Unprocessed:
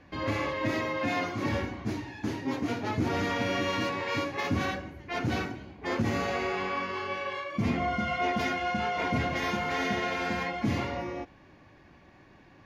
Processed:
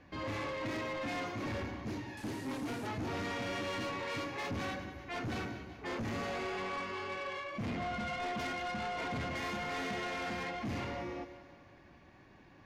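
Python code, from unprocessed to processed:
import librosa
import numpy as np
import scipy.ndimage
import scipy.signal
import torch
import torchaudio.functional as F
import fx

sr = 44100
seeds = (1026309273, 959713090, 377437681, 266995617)

y = fx.delta_mod(x, sr, bps=64000, step_db=-40.0, at=(2.17, 2.87))
y = fx.echo_split(y, sr, split_hz=490.0, low_ms=103, high_ms=190, feedback_pct=52, wet_db=-15)
y = 10.0 ** (-30.5 / 20.0) * np.tanh(y / 10.0 ** (-30.5 / 20.0))
y = y * librosa.db_to_amplitude(-3.5)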